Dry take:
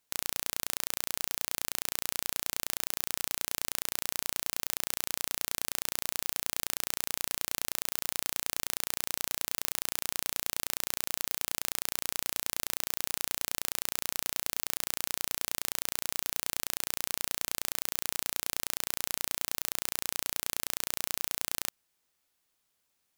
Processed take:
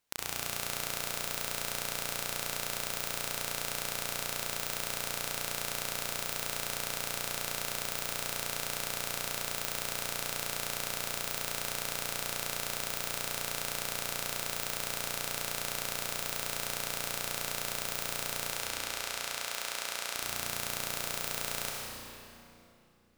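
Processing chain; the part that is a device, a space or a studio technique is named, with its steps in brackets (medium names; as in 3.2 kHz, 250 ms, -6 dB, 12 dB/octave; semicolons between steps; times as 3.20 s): 18.50–20.13 s: frequency weighting A; swimming-pool hall (reverberation RT60 2.9 s, pre-delay 58 ms, DRR -1.5 dB; treble shelf 5.4 kHz -6 dB)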